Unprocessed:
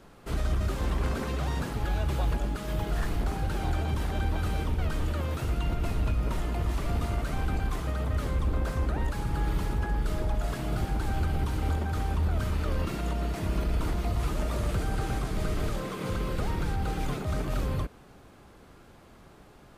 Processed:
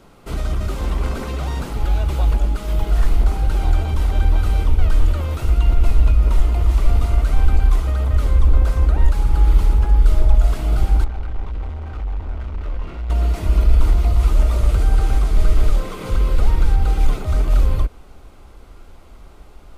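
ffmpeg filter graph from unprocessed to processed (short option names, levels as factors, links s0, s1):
-filter_complex "[0:a]asettb=1/sr,asplit=3[s0][s1][s2];[s0]atrim=end=11.044[s3];[s1]atrim=start=11.04:end=13.1,asetpts=PTS-STARTPTS,afade=t=in:d=0.004:c=qsin,afade=t=out:st=2.056:d=0.004:c=qsin,lowpass=2500,flanger=delay=15.5:depth=4.7:speed=1.4,asoftclip=type=hard:threshold=0.015[s4];[s2]atrim=start=13.096[s5];[s3][s4]acrossfade=d=0.004:c1=hsin:c2=qsin[s6];[s6][s5]acrossfade=d=0.004:c1=qsin:c2=hsin,bandreject=f=1700:w=8.8,asubboost=boost=7.5:cutoff=50,volume=1.78"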